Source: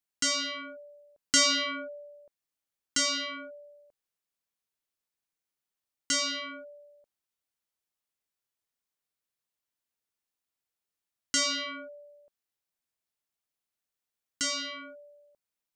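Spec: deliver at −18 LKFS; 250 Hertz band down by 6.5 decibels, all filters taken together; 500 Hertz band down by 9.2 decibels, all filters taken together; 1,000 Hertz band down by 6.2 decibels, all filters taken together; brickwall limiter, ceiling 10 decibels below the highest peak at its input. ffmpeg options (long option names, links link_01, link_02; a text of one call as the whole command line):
ffmpeg -i in.wav -af "equalizer=frequency=250:width_type=o:gain=-4.5,equalizer=frequency=500:width_type=o:gain=-8,equalizer=frequency=1000:width_type=o:gain=-7,volume=14dB,alimiter=limit=-11dB:level=0:latency=1" out.wav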